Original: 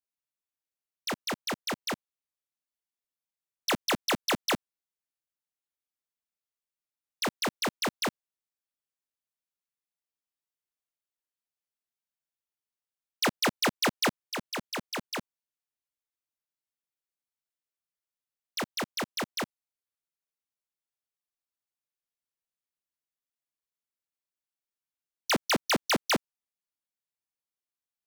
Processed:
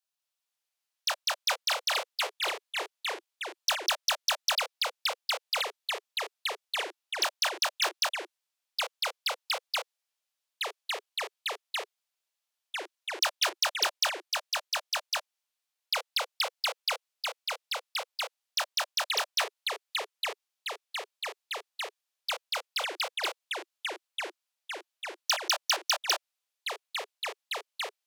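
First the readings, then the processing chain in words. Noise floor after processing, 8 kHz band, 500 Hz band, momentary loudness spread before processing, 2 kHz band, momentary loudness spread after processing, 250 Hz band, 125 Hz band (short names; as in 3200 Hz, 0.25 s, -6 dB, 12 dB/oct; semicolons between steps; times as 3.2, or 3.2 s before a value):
under -85 dBFS, +4.5 dB, -1.0 dB, 10 LU, +3.0 dB, 11 LU, -19.0 dB, under -40 dB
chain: steep high-pass 580 Hz 72 dB/oct; bell 3900 Hz +5 dB 2.2 oct; notch 2100 Hz, Q 5.6; compressor, threshold -26 dBFS, peak gain reduction 6 dB; echoes that change speed 0.199 s, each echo -3 st, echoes 3; gain +2.5 dB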